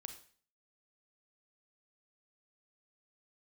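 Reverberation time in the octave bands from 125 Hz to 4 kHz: 0.50, 0.50, 0.45, 0.45, 0.45, 0.45 s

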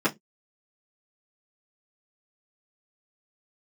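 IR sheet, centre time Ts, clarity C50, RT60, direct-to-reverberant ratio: 11 ms, 23.5 dB, not exponential, -10.0 dB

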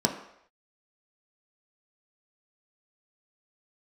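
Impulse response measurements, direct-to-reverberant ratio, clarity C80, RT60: 1.5 dB, 11.0 dB, not exponential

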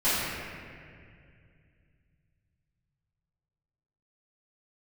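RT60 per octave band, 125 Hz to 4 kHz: 4.1, 3.0, 2.5, 2.0, 2.3, 1.6 s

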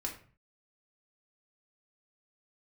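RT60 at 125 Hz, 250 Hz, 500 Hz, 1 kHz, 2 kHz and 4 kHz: 0.55, 0.55, 0.40, 0.40, 0.40, 0.30 s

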